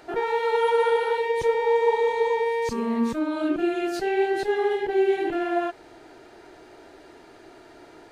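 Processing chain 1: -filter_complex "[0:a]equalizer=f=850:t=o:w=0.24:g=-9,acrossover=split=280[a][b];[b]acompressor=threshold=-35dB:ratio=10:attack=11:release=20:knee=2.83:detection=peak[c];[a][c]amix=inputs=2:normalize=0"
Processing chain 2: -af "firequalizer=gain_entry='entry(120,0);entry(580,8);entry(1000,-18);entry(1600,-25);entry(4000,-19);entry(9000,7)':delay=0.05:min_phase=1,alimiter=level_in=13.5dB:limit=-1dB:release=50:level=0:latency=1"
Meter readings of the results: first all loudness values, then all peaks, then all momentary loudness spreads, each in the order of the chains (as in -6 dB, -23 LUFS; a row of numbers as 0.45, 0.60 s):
-30.5, -8.5 LUFS; -17.0, -1.0 dBFS; 20, 3 LU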